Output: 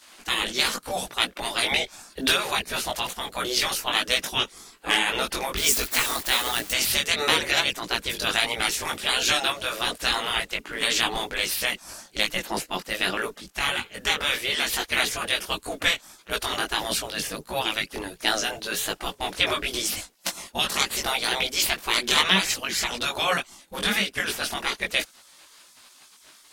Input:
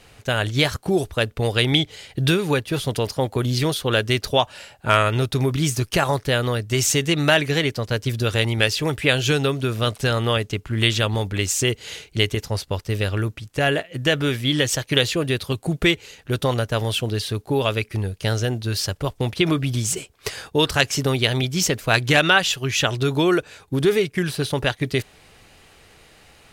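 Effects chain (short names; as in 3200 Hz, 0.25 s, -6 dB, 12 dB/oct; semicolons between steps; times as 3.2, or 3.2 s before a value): 5.57–6.72 switching spikes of -22.5 dBFS; spectral gate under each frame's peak -15 dB weak; chorus voices 4, 1.5 Hz, delay 19 ms, depth 3 ms; gain +8.5 dB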